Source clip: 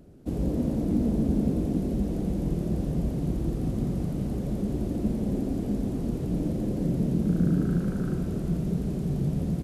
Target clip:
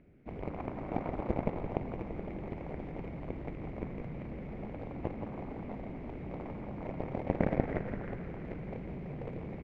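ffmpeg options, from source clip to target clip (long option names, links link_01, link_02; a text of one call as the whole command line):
ffmpeg -i in.wav -filter_complex "[0:a]aeval=exprs='0.251*(cos(1*acos(clip(val(0)/0.251,-1,1)))-cos(1*PI/2))+0.1*(cos(3*acos(clip(val(0)/0.251,-1,1)))-cos(3*PI/2))+0.00355*(cos(7*acos(clip(val(0)/0.251,-1,1)))-cos(7*PI/2))':channel_layout=same,lowpass=frequency=2200:width_type=q:width=6.9,asplit=9[link_01][link_02][link_03][link_04][link_05][link_06][link_07][link_08][link_09];[link_02]adelay=169,afreqshift=-31,volume=-9dB[link_10];[link_03]adelay=338,afreqshift=-62,volume=-12.9dB[link_11];[link_04]adelay=507,afreqshift=-93,volume=-16.8dB[link_12];[link_05]adelay=676,afreqshift=-124,volume=-20.6dB[link_13];[link_06]adelay=845,afreqshift=-155,volume=-24.5dB[link_14];[link_07]adelay=1014,afreqshift=-186,volume=-28.4dB[link_15];[link_08]adelay=1183,afreqshift=-217,volume=-32.3dB[link_16];[link_09]adelay=1352,afreqshift=-248,volume=-36.1dB[link_17];[link_01][link_10][link_11][link_12][link_13][link_14][link_15][link_16][link_17]amix=inputs=9:normalize=0,volume=1dB" out.wav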